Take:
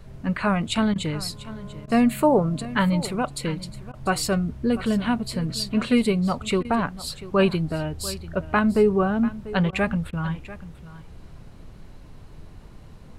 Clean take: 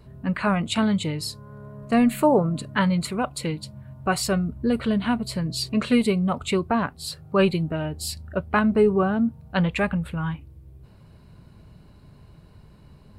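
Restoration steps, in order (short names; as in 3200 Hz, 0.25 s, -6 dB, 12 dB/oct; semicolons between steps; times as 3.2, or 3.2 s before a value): interpolate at 0.94/1.86/3.92/6.63/9.71/10.11, 16 ms; noise print and reduce 7 dB; inverse comb 0.692 s -16.5 dB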